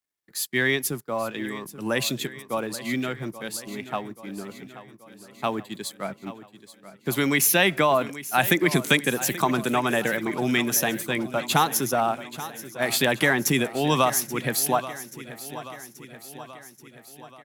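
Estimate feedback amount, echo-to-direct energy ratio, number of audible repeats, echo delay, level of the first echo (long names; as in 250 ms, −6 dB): 60%, −13.0 dB, 5, 831 ms, −15.0 dB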